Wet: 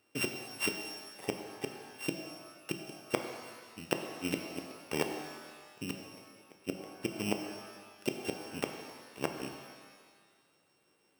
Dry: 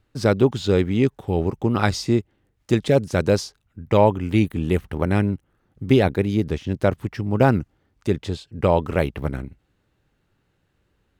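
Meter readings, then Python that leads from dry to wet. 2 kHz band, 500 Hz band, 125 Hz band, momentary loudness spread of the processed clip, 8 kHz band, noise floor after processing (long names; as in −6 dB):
−10.5 dB, −19.0 dB, −26.0 dB, 14 LU, −4.5 dB, −72 dBFS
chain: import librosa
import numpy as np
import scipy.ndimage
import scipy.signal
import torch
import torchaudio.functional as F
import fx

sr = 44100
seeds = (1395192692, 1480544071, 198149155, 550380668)

y = np.r_[np.sort(x[:len(x) // 16 * 16].reshape(-1, 16), axis=1).ravel(), x[len(x) // 16 * 16:]]
y = fx.gate_flip(y, sr, shuts_db=-14.0, range_db=-42)
y = scipy.signal.sosfilt(scipy.signal.butter(2, 320.0, 'highpass', fs=sr, output='sos'), y)
y = fx.rev_shimmer(y, sr, seeds[0], rt60_s=1.5, semitones=12, shimmer_db=-8, drr_db=5.0)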